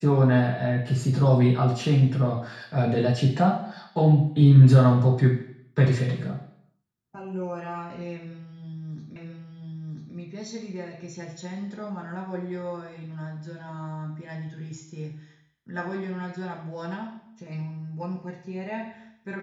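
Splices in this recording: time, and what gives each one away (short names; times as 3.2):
9.16 repeat of the last 0.99 s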